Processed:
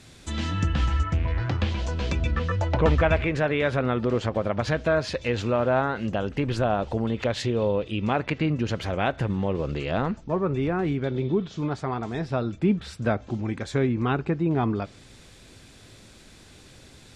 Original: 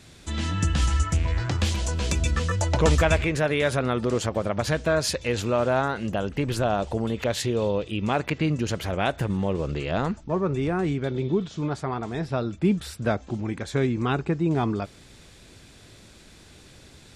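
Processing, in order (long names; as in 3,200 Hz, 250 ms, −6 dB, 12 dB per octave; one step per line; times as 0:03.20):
0:01.03–0:03.16: parametric band 11,000 Hz −10 dB 1.6 octaves
convolution reverb, pre-delay 4 ms, DRR 17.5 dB
treble cut that deepens with the level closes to 3,000 Hz, closed at −20 dBFS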